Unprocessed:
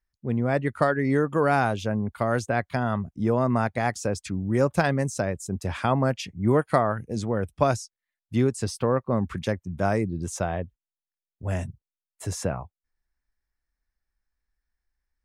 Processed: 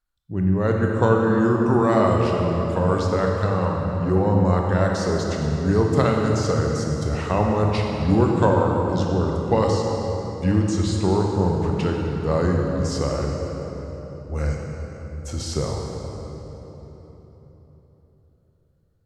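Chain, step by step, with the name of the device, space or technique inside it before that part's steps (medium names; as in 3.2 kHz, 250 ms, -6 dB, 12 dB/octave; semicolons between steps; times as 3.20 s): slowed and reverbed (tape speed -20%; reverberation RT60 3.9 s, pre-delay 21 ms, DRR 0 dB); trim +1 dB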